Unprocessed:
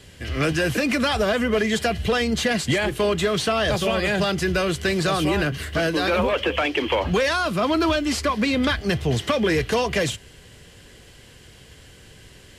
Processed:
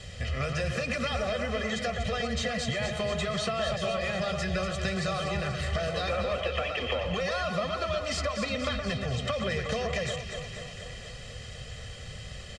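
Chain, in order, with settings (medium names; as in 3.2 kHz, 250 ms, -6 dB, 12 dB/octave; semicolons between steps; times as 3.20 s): low-pass 8 kHz 24 dB/octave; band-stop 420 Hz, Q 12; comb 1.6 ms, depth 98%; compression, threshold -30 dBFS, peak gain reduction 15.5 dB; on a send: echo whose repeats swap between lows and highs 120 ms, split 2.3 kHz, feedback 81%, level -5.5 dB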